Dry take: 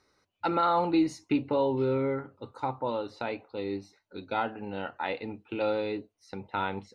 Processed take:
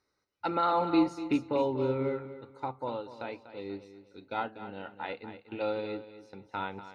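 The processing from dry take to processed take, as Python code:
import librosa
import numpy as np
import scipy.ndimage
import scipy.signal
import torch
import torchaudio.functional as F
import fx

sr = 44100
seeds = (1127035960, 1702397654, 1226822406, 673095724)

p1 = x + fx.echo_feedback(x, sr, ms=243, feedback_pct=33, wet_db=-9.0, dry=0)
y = fx.upward_expand(p1, sr, threshold_db=-40.0, expansion=1.5)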